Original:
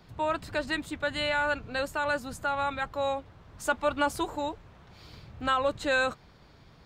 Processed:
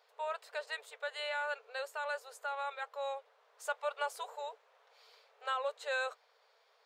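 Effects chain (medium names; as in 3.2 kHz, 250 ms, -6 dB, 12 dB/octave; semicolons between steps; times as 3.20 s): octave divider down 1 oct, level +4 dB; brick-wall FIR high-pass 420 Hz; trim -9 dB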